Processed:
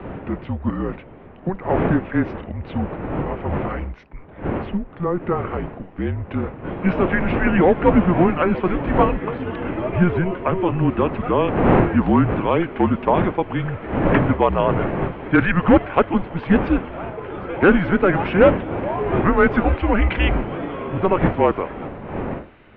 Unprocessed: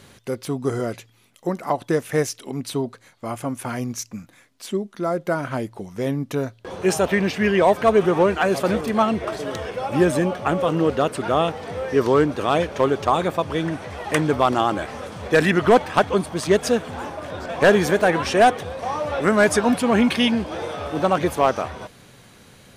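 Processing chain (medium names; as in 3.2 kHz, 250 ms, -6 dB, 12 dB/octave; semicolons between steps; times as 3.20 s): wind noise 560 Hz -26 dBFS; mistuned SSB -180 Hz 210–2900 Hz; trim +1.5 dB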